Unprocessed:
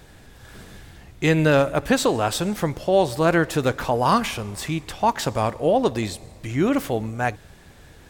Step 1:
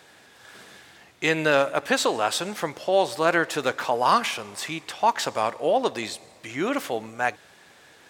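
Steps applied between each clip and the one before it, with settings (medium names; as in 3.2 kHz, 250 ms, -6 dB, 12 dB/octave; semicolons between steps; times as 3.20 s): frequency weighting A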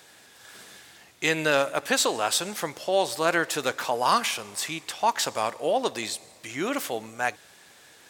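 treble shelf 4.5 kHz +10 dB; trim -3 dB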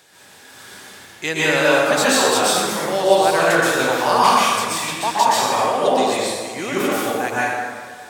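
plate-style reverb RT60 1.8 s, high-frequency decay 0.6×, pre-delay 110 ms, DRR -8.5 dB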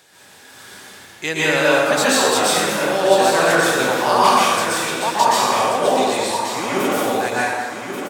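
feedback delay 1135 ms, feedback 27%, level -8 dB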